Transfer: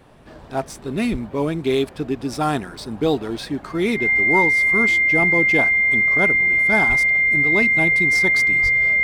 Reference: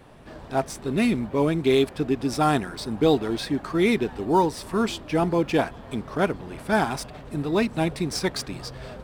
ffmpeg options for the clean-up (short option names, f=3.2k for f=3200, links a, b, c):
-filter_complex "[0:a]bandreject=f=2.1k:w=30,asplit=3[a][b][c];[a]afade=t=out:st=1.11:d=0.02[d];[b]highpass=f=140:w=0.5412,highpass=f=140:w=1.3066,afade=t=in:st=1.11:d=0.02,afade=t=out:st=1.23:d=0.02[e];[c]afade=t=in:st=1.23:d=0.02[f];[d][e][f]amix=inputs=3:normalize=0,asplit=3[g][h][i];[g]afade=t=out:st=6.88:d=0.02[j];[h]highpass=f=140:w=0.5412,highpass=f=140:w=1.3066,afade=t=in:st=6.88:d=0.02,afade=t=out:st=7:d=0.02[k];[i]afade=t=in:st=7:d=0.02[l];[j][k][l]amix=inputs=3:normalize=0,asplit=3[m][n][o];[m]afade=t=out:st=8.62:d=0.02[p];[n]highpass=f=140:w=0.5412,highpass=f=140:w=1.3066,afade=t=in:st=8.62:d=0.02,afade=t=out:st=8.74:d=0.02[q];[o]afade=t=in:st=8.74:d=0.02[r];[p][q][r]amix=inputs=3:normalize=0"